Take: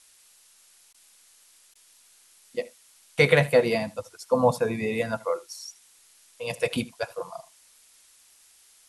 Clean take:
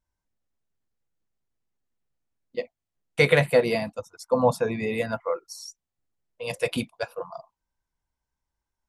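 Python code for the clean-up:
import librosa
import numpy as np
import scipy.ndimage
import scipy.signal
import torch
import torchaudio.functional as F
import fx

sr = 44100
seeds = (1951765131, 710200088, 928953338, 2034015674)

y = fx.fix_interpolate(x, sr, at_s=(0.93, 1.74), length_ms=12.0)
y = fx.noise_reduce(y, sr, print_start_s=0.43, print_end_s=0.93, reduce_db=27.0)
y = fx.fix_echo_inverse(y, sr, delay_ms=77, level_db=-20.5)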